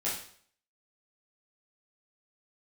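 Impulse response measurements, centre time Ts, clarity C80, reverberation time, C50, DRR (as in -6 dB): 40 ms, 8.5 dB, 0.55 s, 4.0 dB, -8.5 dB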